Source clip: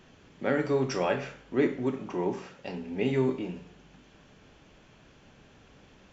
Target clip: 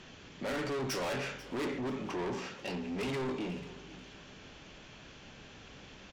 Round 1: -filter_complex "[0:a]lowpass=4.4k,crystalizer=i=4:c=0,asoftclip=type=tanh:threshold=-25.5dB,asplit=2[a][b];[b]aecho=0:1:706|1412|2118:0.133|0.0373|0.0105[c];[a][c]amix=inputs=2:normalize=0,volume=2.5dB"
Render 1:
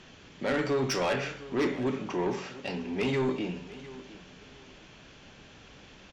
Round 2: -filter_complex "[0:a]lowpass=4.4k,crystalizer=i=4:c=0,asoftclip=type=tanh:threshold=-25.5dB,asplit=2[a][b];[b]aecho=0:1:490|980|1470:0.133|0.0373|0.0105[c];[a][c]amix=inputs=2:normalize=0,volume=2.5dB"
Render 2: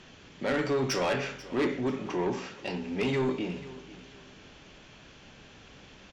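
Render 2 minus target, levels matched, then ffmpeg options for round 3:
soft clip: distortion -6 dB
-filter_complex "[0:a]lowpass=4.4k,crystalizer=i=4:c=0,asoftclip=type=tanh:threshold=-35.5dB,asplit=2[a][b];[b]aecho=0:1:490|980|1470:0.133|0.0373|0.0105[c];[a][c]amix=inputs=2:normalize=0,volume=2.5dB"

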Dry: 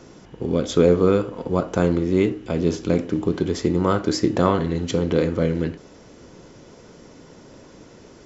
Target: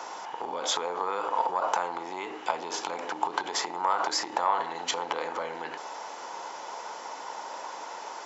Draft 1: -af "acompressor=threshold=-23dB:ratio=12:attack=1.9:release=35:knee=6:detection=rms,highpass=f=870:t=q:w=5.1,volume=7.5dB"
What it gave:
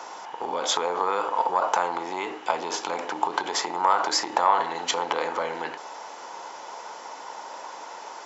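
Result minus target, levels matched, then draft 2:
compressor: peak gain reduction -5.5 dB
-af "acompressor=threshold=-29dB:ratio=12:attack=1.9:release=35:knee=6:detection=rms,highpass=f=870:t=q:w=5.1,volume=7.5dB"

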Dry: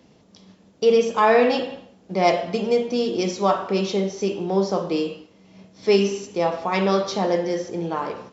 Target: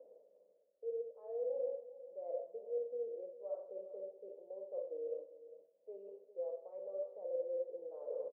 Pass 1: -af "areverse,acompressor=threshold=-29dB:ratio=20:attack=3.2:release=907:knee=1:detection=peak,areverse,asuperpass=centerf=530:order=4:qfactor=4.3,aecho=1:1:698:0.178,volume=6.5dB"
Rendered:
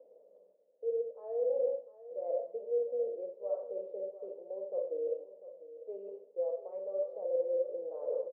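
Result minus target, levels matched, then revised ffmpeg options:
echo 0.297 s late; compressor: peak gain reduction -7 dB
-af "areverse,acompressor=threshold=-36.5dB:ratio=20:attack=3.2:release=907:knee=1:detection=peak,areverse,asuperpass=centerf=530:order=4:qfactor=4.3,aecho=1:1:401:0.178,volume=6.5dB"

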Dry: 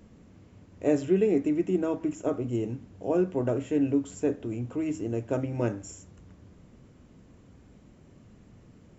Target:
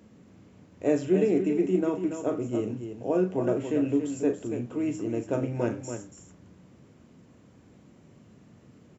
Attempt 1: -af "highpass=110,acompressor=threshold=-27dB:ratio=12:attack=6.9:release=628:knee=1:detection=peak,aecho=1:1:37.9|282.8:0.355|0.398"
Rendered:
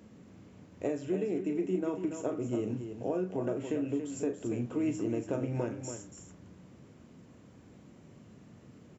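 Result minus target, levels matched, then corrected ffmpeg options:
compressor: peak gain reduction +11.5 dB
-af "highpass=110,aecho=1:1:37.9|282.8:0.355|0.398"

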